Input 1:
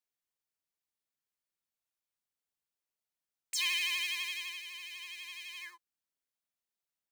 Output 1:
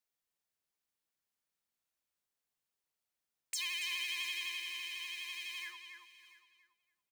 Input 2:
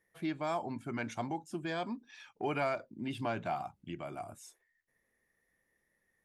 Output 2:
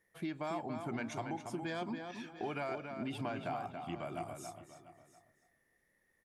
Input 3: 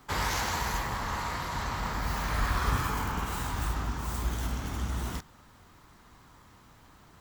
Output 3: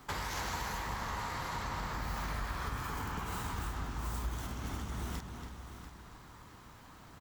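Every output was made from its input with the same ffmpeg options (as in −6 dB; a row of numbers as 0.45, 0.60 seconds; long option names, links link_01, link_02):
-filter_complex "[0:a]asplit=2[link_01][link_02];[link_02]aecho=0:1:690:0.126[link_03];[link_01][link_03]amix=inputs=2:normalize=0,acompressor=threshold=-37dB:ratio=5,asplit=2[link_04][link_05];[link_05]adelay=281,lowpass=frequency=3800:poles=1,volume=-6dB,asplit=2[link_06][link_07];[link_07]adelay=281,lowpass=frequency=3800:poles=1,volume=0.24,asplit=2[link_08][link_09];[link_09]adelay=281,lowpass=frequency=3800:poles=1,volume=0.24[link_10];[link_06][link_08][link_10]amix=inputs=3:normalize=0[link_11];[link_04][link_11]amix=inputs=2:normalize=0,volume=1dB"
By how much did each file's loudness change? −3.5, −3.0, −7.0 LU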